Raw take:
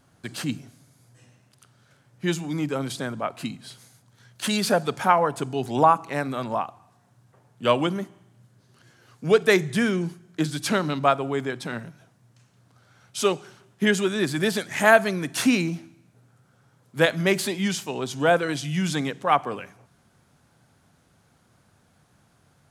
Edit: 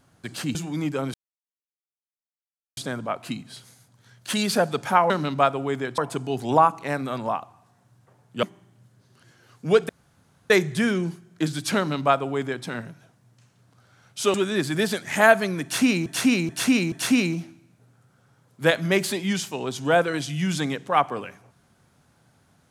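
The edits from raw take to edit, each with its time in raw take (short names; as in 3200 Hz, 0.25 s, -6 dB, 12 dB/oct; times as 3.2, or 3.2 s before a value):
0.55–2.32 cut
2.91 insert silence 1.63 s
7.69–8.02 cut
9.48 insert room tone 0.61 s
10.75–11.63 copy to 5.24
13.32–13.98 cut
15.27–15.7 loop, 4 plays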